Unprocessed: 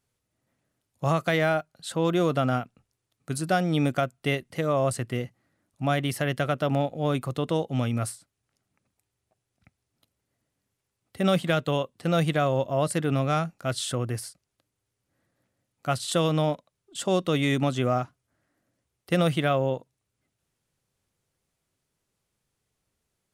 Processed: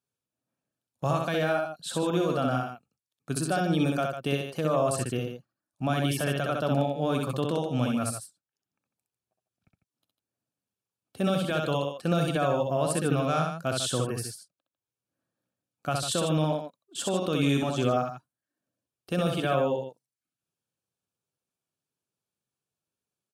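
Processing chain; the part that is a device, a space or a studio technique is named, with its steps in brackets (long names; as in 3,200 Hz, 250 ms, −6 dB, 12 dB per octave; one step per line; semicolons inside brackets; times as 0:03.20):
PA system with an anti-feedback notch (high-pass filter 150 Hz 12 dB per octave; Butterworth band-reject 2,000 Hz, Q 5.5; brickwall limiter −17.5 dBFS, peak gain reduction 7.5 dB)
noise gate −58 dBFS, range −11 dB
reverb reduction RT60 0.52 s
low-shelf EQ 99 Hz +6 dB
loudspeakers that aren't time-aligned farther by 22 metres −3 dB, 51 metres −9 dB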